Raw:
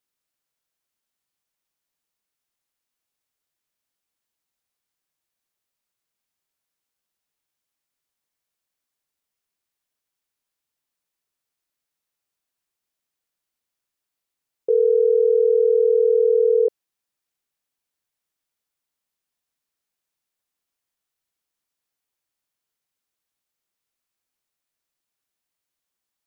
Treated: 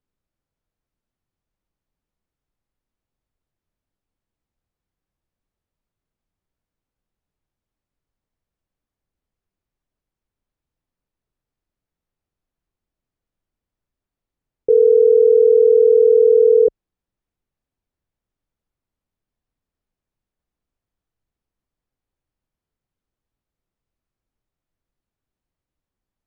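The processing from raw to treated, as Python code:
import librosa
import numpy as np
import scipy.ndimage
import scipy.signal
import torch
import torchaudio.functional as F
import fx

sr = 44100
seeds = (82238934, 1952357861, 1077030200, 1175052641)

y = fx.tilt_eq(x, sr, slope=-4.5)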